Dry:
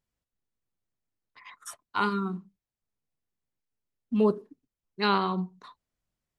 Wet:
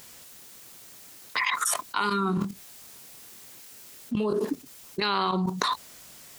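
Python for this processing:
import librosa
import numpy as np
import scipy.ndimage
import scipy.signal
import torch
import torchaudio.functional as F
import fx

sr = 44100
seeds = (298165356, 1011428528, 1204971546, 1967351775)

y = fx.highpass(x, sr, hz=330.0, slope=6)
y = fx.high_shelf(y, sr, hz=3400.0, db=9.5)
y = fx.level_steps(y, sr, step_db=15)
y = fx.doubler(y, sr, ms=24.0, db=-8.0, at=(2.35, 4.33))
y = fx.env_flatten(y, sr, amount_pct=100)
y = F.gain(torch.from_numpy(y), 1.5).numpy()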